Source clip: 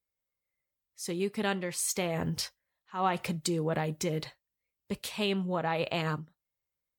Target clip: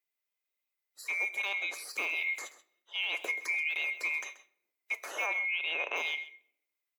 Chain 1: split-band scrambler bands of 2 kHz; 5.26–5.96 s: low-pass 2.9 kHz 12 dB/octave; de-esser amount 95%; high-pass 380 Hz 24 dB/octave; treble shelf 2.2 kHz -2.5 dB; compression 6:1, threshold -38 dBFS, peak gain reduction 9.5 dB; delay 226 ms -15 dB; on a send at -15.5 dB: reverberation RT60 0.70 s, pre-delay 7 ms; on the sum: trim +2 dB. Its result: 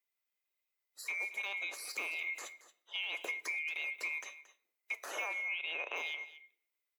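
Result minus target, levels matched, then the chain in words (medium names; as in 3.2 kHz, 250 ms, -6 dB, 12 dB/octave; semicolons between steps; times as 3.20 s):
echo 95 ms late; compression: peak gain reduction +6 dB
split-band scrambler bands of 2 kHz; 5.26–5.96 s: low-pass 2.9 kHz 12 dB/octave; de-esser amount 95%; high-pass 380 Hz 24 dB/octave; treble shelf 2.2 kHz -2.5 dB; compression 6:1, threshold -30.5 dBFS, peak gain reduction 3 dB; delay 131 ms -15 dB; on a send at -15.5 dB: reverberation RT60 0.70 s, pre-delay 7 ms; on the sum: trim +2 dB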